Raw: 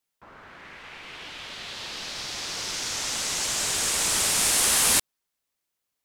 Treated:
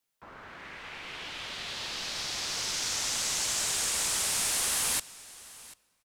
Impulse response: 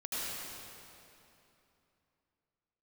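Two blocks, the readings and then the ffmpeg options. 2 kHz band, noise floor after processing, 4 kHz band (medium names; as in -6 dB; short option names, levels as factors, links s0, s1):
-5.0 dB, -73 dBFS, -4.0 dB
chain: -filter_complex "[0:a]acrossover=split=180|520|4200[s0][s1][s2][s3];[s0]acompressor=threshold=0.00316:ratio=4[s4];[s1]acompressor=threshold=0.00224:ratio=4[s5];[s2]acompressor=threshold=0.0158:ratio=4[s6];[s3]acompressor=threshold=0.0355:ratio=4[s7];[s4][s5][s6][s7]amix=inputs=4:normalize=0,aecho=1:1:740:0.1,asplit=2[s8][s9];[1:a]atrim=start_sample=2205[s10];[s9][s10]afir=irnorm=-1:irlink=0,volume=0.0398[s11];[s8][s11]amix=inputs=2:normalize=0"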